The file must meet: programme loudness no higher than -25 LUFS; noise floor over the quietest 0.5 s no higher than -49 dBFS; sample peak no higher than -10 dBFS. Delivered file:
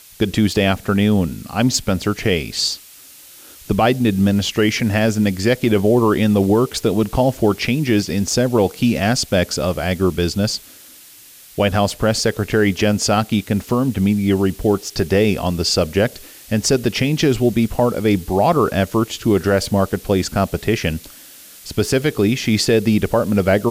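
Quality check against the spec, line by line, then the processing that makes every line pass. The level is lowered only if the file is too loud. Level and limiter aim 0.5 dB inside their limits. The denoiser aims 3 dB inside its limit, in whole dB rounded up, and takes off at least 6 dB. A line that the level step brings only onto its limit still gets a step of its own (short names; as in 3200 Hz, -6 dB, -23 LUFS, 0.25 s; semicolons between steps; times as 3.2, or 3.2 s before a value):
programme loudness -17.5 LUFS: fail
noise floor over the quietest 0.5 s -43 dBFS: fail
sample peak -5.0 dBFS: fail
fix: gain -8 dB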